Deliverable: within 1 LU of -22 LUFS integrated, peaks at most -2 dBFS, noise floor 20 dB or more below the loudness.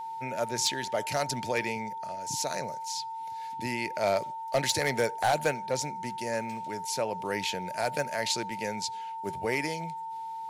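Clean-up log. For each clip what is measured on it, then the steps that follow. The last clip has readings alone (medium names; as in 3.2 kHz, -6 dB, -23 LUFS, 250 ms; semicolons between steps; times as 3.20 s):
clipped samples 0.2%; clipping level -18.5 dBFS; steady tone 900 Hz; tone level -35 dBFS; loudness -31.0 LUFS; peak level -18.5 dBFS; loudness target -22.0 LUFS
-> clip repair -18.5 dBFS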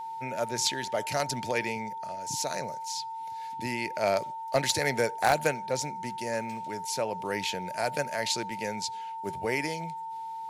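clipped samples 0.0%; steady tone 900 Hz; tone level -35 dBFS
-> band-stop 900 Hz, Q 30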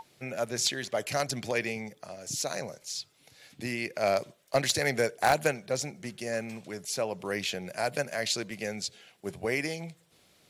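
steady tone not found; loudness -31.5 LUFS; peak level -9.5 dBFS; loudness target -22.0 LUFS
-> trim +9.5 dB; peak limiter -2 dBFS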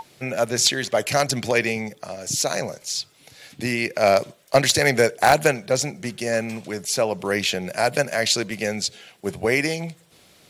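loudness -22.0 LUFS; peak level -2.0 dBFS; noise floor -55 dBFS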